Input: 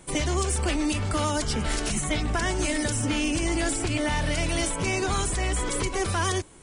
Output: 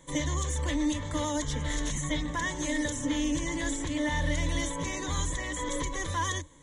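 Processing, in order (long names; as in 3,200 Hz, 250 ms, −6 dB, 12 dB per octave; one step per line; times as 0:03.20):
EQ curve with evenly spaced ripples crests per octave 1.1, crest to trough 15 dB
level −7.5 dB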